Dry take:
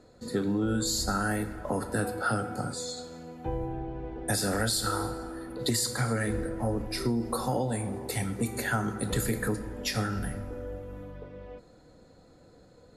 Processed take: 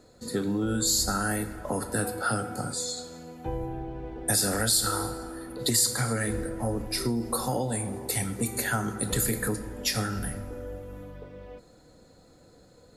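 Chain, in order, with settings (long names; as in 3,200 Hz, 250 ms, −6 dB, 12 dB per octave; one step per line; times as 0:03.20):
high-shelf EQ 5,200 Hz +9.5 dB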